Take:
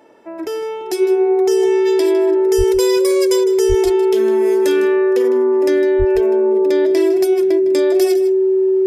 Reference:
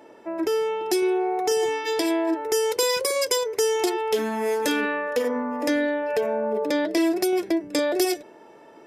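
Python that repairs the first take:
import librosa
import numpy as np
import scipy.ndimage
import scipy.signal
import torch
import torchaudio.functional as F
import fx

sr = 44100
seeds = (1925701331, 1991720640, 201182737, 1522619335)

y = fx.notch(x, sr, hz=380.0, q=30.0)
y = fx.highpass(y, sr, hz=140.0, slope=24, at=(2.57, 2.69), fade=0.02)
y = fx.highpass(y, sr, hz=140.0, slope=24, at=(3.68, 3.8), fade=0.02)
y = fx.highpass(y, sr, hz=140.0, slope=24, at=(5.98, 6.1), fade=0.02)
y = fx.fix_echo_inverse(y, sr, delay_ms=156, level_db=-14.0)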